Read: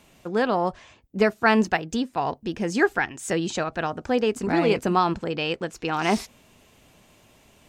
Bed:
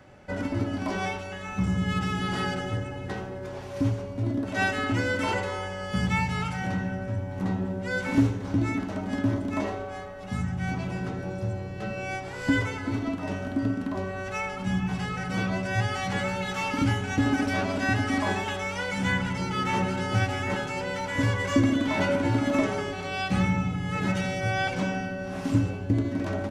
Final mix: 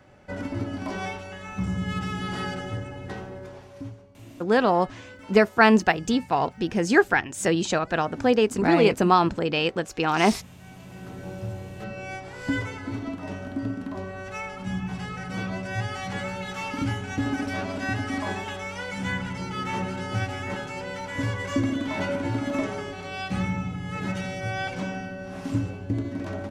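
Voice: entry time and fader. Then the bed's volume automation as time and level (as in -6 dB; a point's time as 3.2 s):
4.15 s, +2.5 dB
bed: 3.38 s -2 dB
4.13 s -18.5 dB
10.61 s -18.5 dB
11.29 s -3 dB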